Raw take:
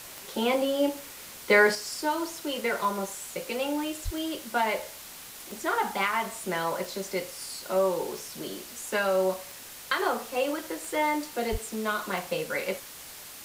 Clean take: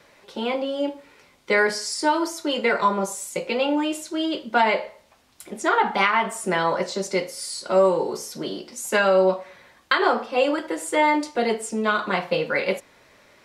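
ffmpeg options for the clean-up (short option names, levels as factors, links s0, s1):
-filter_complex "[0:a]adeclick=t=4,asplit=3[s0][s1][s2];[s0]afade=t=out:st=4.04:d=0.02[s3];[s1]highpass=f=140:w=0.5412,highpass=f=140:w=1.3066,afade=t=in:st=4.04:d=0.02,afade=t=out:st=4.16:d=0.02[s4];[s2]afade=t=in:st=4.16:d=0.02[s5];[s3][s4][s5]amix=inputs=3:normalize=0,asplit=3[s6][s7][s8];[s6]afade=t=out:st=11.51:d=0.02[s9];[s7]highpass=f=140:w=0.5412,highpass=f=140:w=1.3066,afade=t=in:st=11.51:d=0.02,afade=t=out:st=11.63:d=0.02[s10];[s8]afade=t=in:st=11.63:d=0.02[s11];[s9][s10][s11]amix=inputs=3:normalize=0,afwtdn=0.0071,asetnsamples=n=441:p=0,asendcmd='1.75 volume volume 7.5dB',volume=1"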